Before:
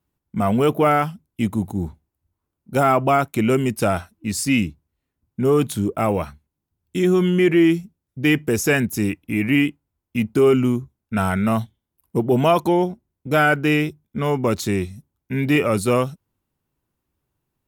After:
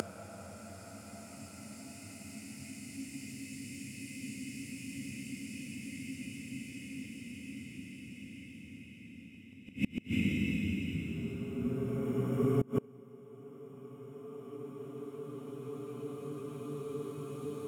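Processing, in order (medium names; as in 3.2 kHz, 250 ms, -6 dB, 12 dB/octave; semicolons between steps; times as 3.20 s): Paulstretch 12×, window 1.00 s, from 4.08 s; inverted gate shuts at -23 dBFS, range -28 dB; trim +5.5 dB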